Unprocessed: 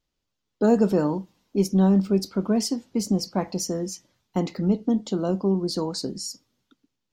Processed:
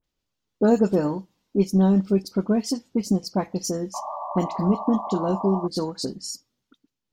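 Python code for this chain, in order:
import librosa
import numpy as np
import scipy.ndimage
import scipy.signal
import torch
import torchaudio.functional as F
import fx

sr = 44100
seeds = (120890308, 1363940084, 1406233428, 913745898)

y = fx.transient(x, sr, attack_db=2, sustain_db=-5)
y = fx.spec_paint(y, sr, seeds[0], shape='noise', start_s=3.93, length_s=1.74, low_hz=570.0, high_hz=1200.0, level_db=-32.0)
y = fx.dispersion(y, sr, late='highs', ms=42.0, hz=2200.0)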